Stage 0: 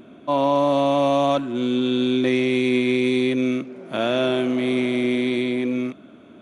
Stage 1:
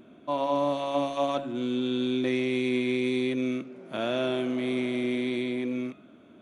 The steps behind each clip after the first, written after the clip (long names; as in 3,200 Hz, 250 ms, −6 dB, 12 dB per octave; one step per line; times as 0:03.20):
hum removal 139.1 Hz, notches 27
level −7 dB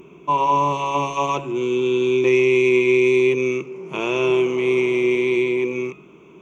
EQ curve with evenly spaced ripples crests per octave 0.75, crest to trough 17 dB
level +6 dB